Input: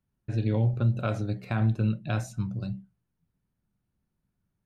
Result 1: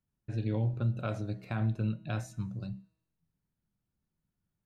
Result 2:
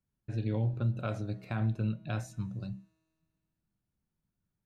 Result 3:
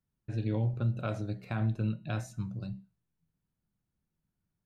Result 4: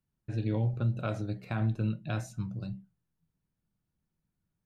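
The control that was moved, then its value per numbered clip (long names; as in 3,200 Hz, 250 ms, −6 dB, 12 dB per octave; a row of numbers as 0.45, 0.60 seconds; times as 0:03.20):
tuned comb filter, decay: 0.95, 2.1, 0.44, 0.16 seconds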